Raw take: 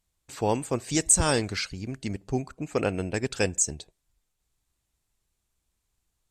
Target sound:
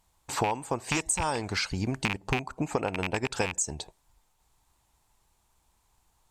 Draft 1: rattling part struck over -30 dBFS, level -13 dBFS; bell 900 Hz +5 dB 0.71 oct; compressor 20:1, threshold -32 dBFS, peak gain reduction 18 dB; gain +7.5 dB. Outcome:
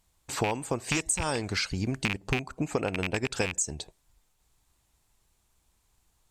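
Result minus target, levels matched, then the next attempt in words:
1000 Hz band -4.0 dB
rattling part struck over -30 dBFS, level -13 dBFS; bell 900 Hz +13 dB 0.71 oct; compressor 20:1, threshold -32 dBFS, peak gain reduction 19.5 dB; gain +7.5 dB

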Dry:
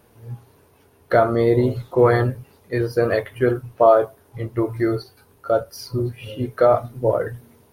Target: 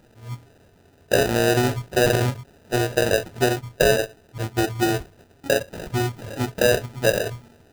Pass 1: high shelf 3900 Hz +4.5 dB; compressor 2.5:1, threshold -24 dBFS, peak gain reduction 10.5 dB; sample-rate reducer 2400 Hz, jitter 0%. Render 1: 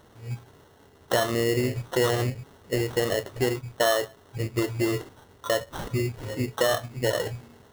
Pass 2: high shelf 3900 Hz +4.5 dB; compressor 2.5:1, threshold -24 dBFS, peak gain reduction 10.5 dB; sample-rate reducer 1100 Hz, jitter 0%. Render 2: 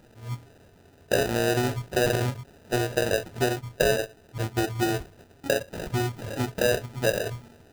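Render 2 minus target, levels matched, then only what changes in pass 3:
compressor: peak gain reduction +5 dB
change: compressor 2.5:1, threshold -15.5 dBFS, peak gain reduction 5.5 dB

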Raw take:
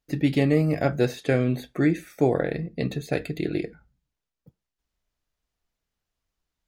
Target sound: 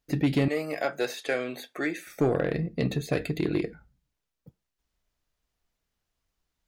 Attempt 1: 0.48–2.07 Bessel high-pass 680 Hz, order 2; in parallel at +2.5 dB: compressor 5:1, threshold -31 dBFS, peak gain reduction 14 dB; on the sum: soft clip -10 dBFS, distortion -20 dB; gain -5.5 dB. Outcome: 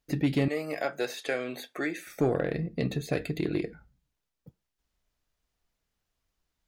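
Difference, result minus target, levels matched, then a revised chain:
compressor: peak gain reduction +7.5 dB
0.48–2.07 Bessel high-pass 680 Hz, order 2; in parallel at +2.5 dB: compressor 5:1, threshold -21.5 dBFS, peak gain reduction 6.5 dB; on the sum: soft clip -10 dBFS, distortion -17 dB; gain -5.5 dB

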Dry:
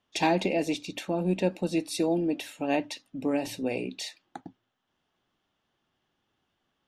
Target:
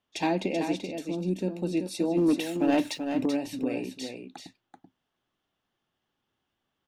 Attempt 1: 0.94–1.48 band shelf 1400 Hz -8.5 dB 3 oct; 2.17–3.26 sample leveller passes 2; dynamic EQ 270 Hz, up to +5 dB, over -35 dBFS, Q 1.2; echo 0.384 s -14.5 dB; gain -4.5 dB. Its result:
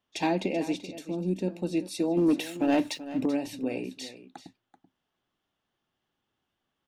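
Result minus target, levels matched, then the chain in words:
echo-to-direct -7.5 dB
0.94–1.48 band shelf 1400 Hz -8.5 dB 3 oct; 2.17–3.26 sample leveller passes 2; dynamic EQ 270 Hz, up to +5 dB, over -35 dBFS, Q 1.2; echo 0.384 s -7 dB; gain -4.5 dB

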